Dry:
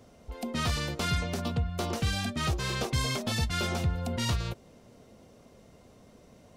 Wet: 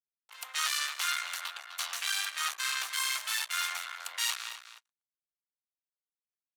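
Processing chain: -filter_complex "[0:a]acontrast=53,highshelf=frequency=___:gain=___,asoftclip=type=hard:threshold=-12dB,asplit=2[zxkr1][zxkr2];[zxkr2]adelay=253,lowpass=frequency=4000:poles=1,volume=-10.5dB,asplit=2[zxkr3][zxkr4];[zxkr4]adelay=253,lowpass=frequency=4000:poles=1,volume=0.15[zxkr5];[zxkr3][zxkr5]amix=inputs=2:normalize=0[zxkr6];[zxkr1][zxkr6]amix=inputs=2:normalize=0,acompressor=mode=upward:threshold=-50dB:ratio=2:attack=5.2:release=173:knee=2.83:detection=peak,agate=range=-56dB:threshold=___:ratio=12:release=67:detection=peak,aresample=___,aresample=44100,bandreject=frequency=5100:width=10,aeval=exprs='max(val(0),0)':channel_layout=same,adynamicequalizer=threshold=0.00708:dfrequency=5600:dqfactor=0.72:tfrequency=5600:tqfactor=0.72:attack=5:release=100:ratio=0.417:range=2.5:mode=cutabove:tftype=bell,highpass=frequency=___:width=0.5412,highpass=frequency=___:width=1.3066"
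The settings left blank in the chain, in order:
3500, 5, -41dB, 32000, 1200, 1200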